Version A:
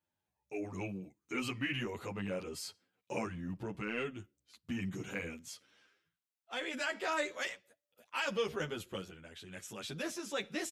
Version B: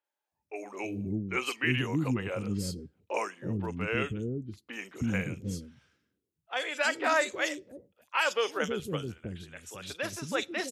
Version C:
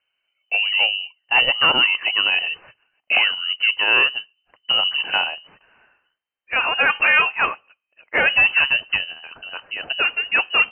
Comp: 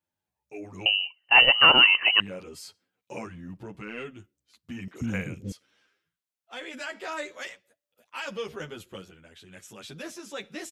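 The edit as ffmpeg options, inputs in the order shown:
-filter_complex "[0:a]asplit=3[s0][s1][s2];[s0]atrim=end=0.862[s3];[2:a]atrim=start=0.858:end=2.202[s4];[s1]atrim=start=2.198:end=4.882[s5];[1:a]atrim=start=4.878:end=5.522[s6];[s2]atrim=start=5.518[s7];[s3][s4]acrossfade=d=0.004:c1=hsin:c2=hsin[s8];[s8][s5]acrossfade=d=0.004:c1=hsin:c2=hsin[s9];[s9][s6]acrossfade=d=0.004:c1=hsin:c2=hsin[s10];[s10][s7]acrossfade=d=0.004:c1=hsin:c2=hsin"

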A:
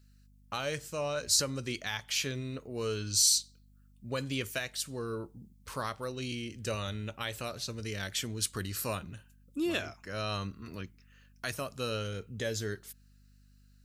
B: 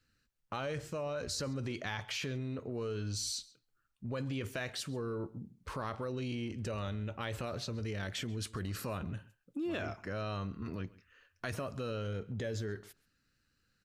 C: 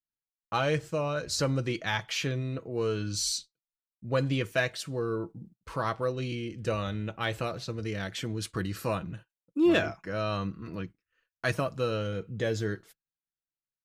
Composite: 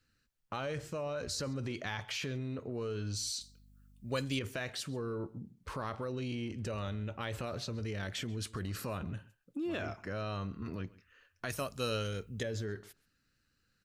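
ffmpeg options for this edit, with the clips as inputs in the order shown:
-filter_complex "[0:a]asplit=2[s0][s1];[1:a]asplit=3[s2][s3][s4];[s2]atrim=end=3.412[s5];[s0]atrim=start=3.408:end=4.392[s6];[s3]atrim=start=4.388:end=11.502[s7];[s1]atrim=start=11.498:end=12.432[s8];[s4]atrim=start=12.428[s9];[s5][s6]acrossfade=d=0.004:c1=hsin:c2=hsin[s10];[s10][s7]acrossfade=d=0.004:c1=hsin:c2=hsin[s11];[s11][s8]acrossfade=d=0.004:c1=hsin:c2=hsin[s12];[s12][s9]acrossfade=d=0.004:c1=hsin:c2=hsin"

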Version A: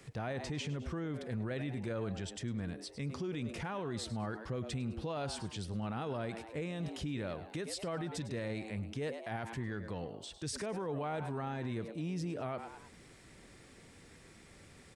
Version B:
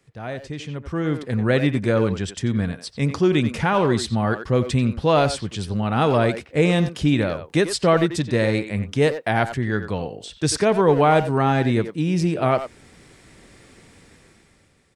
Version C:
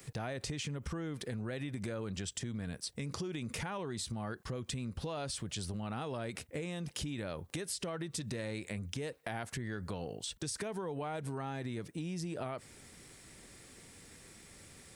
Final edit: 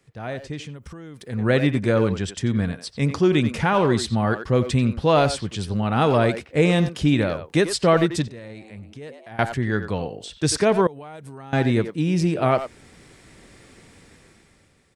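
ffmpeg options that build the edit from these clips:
-filter_complex "[2:a]asplit=2[s0][s1];[1:a]asplit=4[s2][s3][s4][s5];[s2]atrim=end=0.78[s6];[s0]atrim=start=0.54:end=1.47[s7];[s3]atrim=start=1.23:end=8.282[s8];[0:a]atrim=start=8.278:end=9.392[s9];[s4]atrim=start=9.388:end=10.872[s10];[s1]atrim=start=10.868:end=11.532[s11];[s5]atrim=start=11.528[s12];[s6][s7]acrossfade=d=0.24:c1=tri:c2=tri[s13];[s13][s8]acrossfade=d=0.24:c1=tri:c2=tri[s14];[s14][s9]acrossfade=d=0.004:c1=hsin:c2=hsin[s15];[s15][s10]acrossfade=d=0.004:c1=hsin:c2=hsin[s16];[s16][s11]acrossfade=d=0.004:c1=hsin:c2=hsin[s17];[s17][s12]acrossfade=d=0.004:c1=hsin:c2=hsin"

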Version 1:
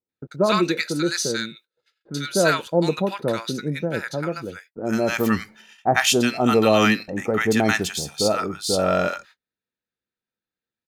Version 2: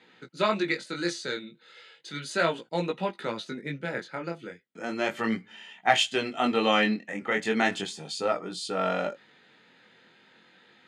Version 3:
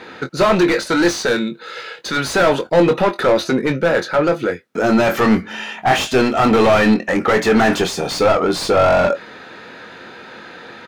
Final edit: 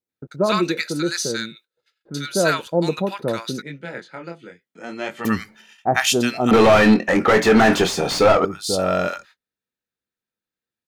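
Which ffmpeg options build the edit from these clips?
-filter_complex "[0:a]asplit=3[s0][s1][s2];[s0]atrim=end=3.622[s3];[1:a]atrim=start=3.618:end=5.252[s4];[s1]atrim=start=5.248:end=6.512[s5];[2:a]atrim=start=6.508:end=8.452[s6];[s2]atrim=start=8.448[s7];[s3][s4]acrossfade=d=0.004:c1=hsin:c2=hsin[s8];[s8][s5]acrossfade=d=0.004:c1=hsin:c2=hsin[s9];[s9][s6]acrossfade=d=0.004:c1=hsin:c2=hsin[s10];[s10][s7]acrossfade=d=0.004:c1=hsin:c2=hsin"

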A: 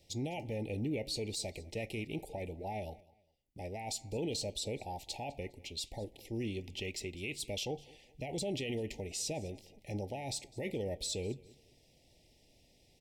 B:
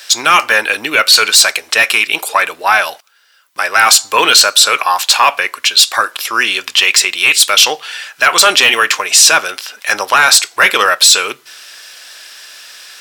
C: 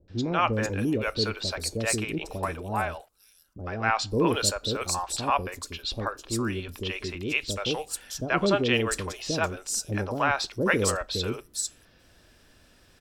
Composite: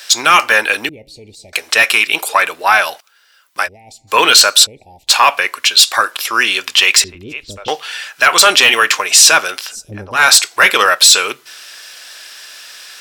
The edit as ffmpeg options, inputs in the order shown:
-filter_complex "[0:a]asplit=3[s0][s1][s2];[2:a]asplit=2[s3][s4];[1:a]asplit=6[s5][s6][s7][s8][s9][s10];[s5]atrim=end=0.892[s11];[s0]atrim=start=0.888:end=1.532[s12];[s6]atrim=start=1.528:end=3.69[s13];[s1]atrim=start=3.63:end=4.13[s14];[s7]atrim=start=4.07:end=4.67[s15];[s2]atrim=start=4.63:end=5.11[s16];[s8]atrim=start=5.07:end=7.042[s17];[s3]atrim=start=7.038:end=7.682[s18];[s9]atrim=start=7.678:end=9.77[s19];[s4]atrim=start=9.67:end=10.22[s20];[s10]atrim=start=10.12[s21];[s11][s12]acrossfade=d=0.004:c1=hsin:c2=hsin[s22];[s22][s13]acrossfade=d=0.004:c1=hsin:c2=hsin[s23];[s23][s14]acrossfade=d=0.06:c1=tri:c2=tri[s24];[s24][s15]acrossfade=d=0.06:c1=tri:c2=tri[s25];[s25][s16]acrossfade=d=0.04:c1=tri:c2=tri[s26];[s26][s17]acrossfade=d=0.04:c1=tri:c2=tri[s27];[s27][s18]acrossfade=d=0.004:c1=hsin:c2=hsin[s28];[s28][s19]acrossfade=d=0.004:c1=hsin:c2=hsin[s29];[s29][s20]acrossfade=d=0.1:c1=tri:c2=tri[s30];[s30][s21]acrossfade=d=0.1:c1=tri:c2=tri"

